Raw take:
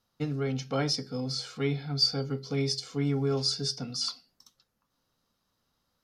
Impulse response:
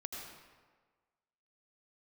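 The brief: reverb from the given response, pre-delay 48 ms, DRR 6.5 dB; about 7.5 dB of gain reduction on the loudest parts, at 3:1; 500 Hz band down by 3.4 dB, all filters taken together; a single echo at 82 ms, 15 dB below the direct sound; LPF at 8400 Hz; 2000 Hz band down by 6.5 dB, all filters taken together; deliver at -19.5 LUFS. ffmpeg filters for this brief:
-filter_complex "[0:a]lowpass=8.4k,equalizer=f=500:t=o:g=-4,equalizer=f=2k:t=o:g=-8,acompressor=threshold=-31dB:ratio=3,aecho=1:1:82:0.178,asplit=2[a][b];[1:a]atrim=start_sample=2205,adelay=48[c];[b][c]afir=irnorm=-1:irlink=0,volume=-5.5dB[d];[a][d]amix=inputs=2:normalize=0,volume=14.5dB"

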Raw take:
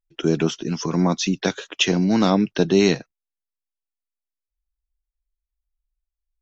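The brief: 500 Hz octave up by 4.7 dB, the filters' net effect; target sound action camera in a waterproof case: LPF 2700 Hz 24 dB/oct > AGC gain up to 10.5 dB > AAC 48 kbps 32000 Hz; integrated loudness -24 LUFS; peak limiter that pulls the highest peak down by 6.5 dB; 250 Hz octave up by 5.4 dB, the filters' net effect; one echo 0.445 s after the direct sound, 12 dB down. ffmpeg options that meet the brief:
-af "equalizer=f=250:t=o:g=6.5,equalizer=f=500:t=o:g=3.5,alimiter=limit=-6.5dB:level=0:latency=1,lowpass=f=2.7k:w=0.5412,lowpass=f=2.7k:w=1.3066,aecho=1:1:445:0.251,dynaudnorm=m=10.5dB,volume=-5.5dB" -ar 32000 -c:a aac -b:a 48k

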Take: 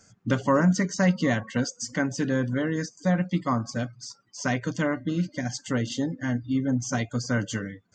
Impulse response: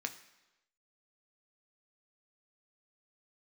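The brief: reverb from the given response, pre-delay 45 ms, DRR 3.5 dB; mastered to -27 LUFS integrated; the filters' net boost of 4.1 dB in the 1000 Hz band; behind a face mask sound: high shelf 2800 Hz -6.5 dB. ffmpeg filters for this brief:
-filter_complex "[0:a]equalizer=f=1k:t=o:g=6,asplit=2[a][b];[1:a]atrim=start_sample=2205,adelay=45[c];[b][c]afir=irnorm=-1:irlink=0,volume=-4dB[d];[a][d]amix=inputs=2:normalize=0,highshelf=f=2.8k:g=-6.5,volume=-2dB"

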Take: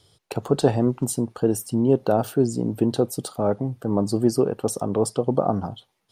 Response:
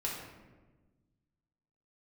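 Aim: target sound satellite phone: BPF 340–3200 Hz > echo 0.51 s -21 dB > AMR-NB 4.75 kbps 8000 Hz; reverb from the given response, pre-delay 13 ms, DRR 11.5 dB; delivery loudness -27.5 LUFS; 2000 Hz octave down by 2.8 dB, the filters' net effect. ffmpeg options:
-filter_complex "[0:a]equalizer=f=2k:t=o:g=-3.5,asplit=2[a][b];[1:a]atrim=start_sample=2205,adelay=13[c];[b][c]afir=irnorm=-1:irlink=0,volume=-15dB[d];[a][d]amix=inputs=2:normalize=0,highpass=340,lowpass=3.2k,aecho=1:1:510:0.0891" -ar 8000 -c:a libopencore_amrnb -b:a 4750

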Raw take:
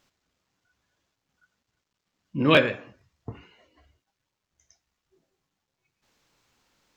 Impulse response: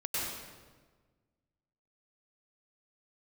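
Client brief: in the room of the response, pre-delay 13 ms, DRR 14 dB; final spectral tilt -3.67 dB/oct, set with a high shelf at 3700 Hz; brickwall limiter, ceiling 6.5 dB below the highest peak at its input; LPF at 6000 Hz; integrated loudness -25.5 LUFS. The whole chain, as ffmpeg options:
-filter_complex "[0:a]lowpass=6k,highshelf=f=3.7k:g=6.5,alimiter=limit=-9dB:level=0:latency=1,asplit=2[a][b];[1:a]atrim=start_sample=2205,adelay=13[c];[b][c]afir=irnorm=-1:irlink=0,volume=-20dB[d];[a][d]amix=inputs=2:normalize=0,volume=-1dB"

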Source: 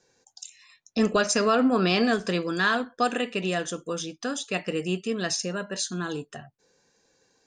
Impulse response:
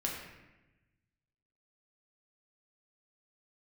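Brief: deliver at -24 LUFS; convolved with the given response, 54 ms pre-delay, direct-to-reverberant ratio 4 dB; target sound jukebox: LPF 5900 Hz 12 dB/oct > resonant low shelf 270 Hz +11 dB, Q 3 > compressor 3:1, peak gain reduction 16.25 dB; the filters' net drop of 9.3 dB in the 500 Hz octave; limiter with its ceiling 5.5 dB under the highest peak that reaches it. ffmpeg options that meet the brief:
-filter_complex "[0:a]equalizer=f=500:t=o:g=-6,alimiter=limit=-17.5dB:level=0:latency=1,asplit=2[a][b];[1:a]atrim=start_sample=2205,adelay=54[c];[b][c]afir=irnorm=-1:irlink=0,volume=-7.5dB[d];[a][d]amix=inputs=2:normalize=0,lowpass=5.9k,lowshelf=f=270:t=q:w=3:g=11,acompressor=threshold=-30dB:ratio=3,volume=5.5dB"

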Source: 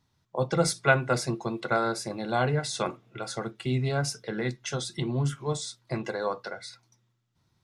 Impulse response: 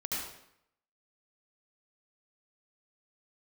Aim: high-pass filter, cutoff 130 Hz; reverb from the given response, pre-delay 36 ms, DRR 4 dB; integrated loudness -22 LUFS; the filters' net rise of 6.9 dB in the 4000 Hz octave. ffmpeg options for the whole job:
-filter_complex "[0:a]highpass=130,equalizer=f=4k:t=o:g=8.5,asplit=2[a][b];[1:a]atrim=start_sample=2205,adelay=36[c];[b][c]afir=irnorm=-1:irlink=0,volume=-8dB[d];[a][d]amix=inputs=2:normalize=0,volume=5dB"

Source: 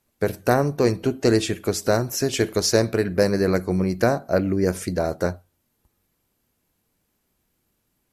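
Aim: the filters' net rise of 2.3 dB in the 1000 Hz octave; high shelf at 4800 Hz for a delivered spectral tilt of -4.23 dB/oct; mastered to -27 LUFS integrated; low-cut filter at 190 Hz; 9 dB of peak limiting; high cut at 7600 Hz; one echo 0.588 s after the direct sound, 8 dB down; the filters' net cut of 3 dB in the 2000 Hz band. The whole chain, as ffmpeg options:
-af "highpass=190,lowpass=7.6k,equalizer=f=1k:t=o:g=5,equalizer=f=2k:t=o:g=-7.5,highshelf=f=4.8k:g=5.5,alimiter=limit=-11dB:level=0:latency=1,aecho=1:1:588:0.398,volume=-3dB"

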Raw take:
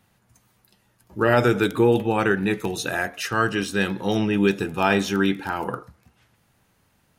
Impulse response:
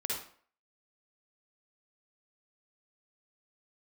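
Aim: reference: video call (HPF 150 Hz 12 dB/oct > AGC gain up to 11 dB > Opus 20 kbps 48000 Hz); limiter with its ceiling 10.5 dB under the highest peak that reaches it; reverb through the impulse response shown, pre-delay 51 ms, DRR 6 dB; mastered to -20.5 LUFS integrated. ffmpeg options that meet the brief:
-filter_complex "[0:a]alimiter=limit=-15.5dB:level=0:latency=1,asplit=2[a][b];[1:a]atrim=start_sample=2205,adelay=51[c];[b][c]afir=irnorm=-1:irlink=0,volume=-10dB[d];[a][d]amix=inputs=2:normalize=0,highpass=150,dynaudnorm=m=11dB,volume=6.5dB" -ar 48000 -c:a libopus -b:a 20k

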